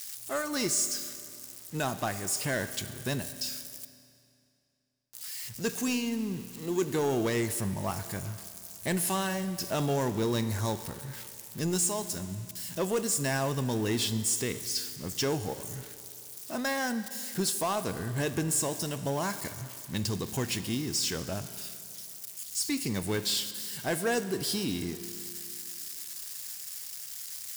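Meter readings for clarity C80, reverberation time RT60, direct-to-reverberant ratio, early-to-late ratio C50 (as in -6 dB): 13.0 dB, 2.5 s, 11.0 dB, 12.0 dB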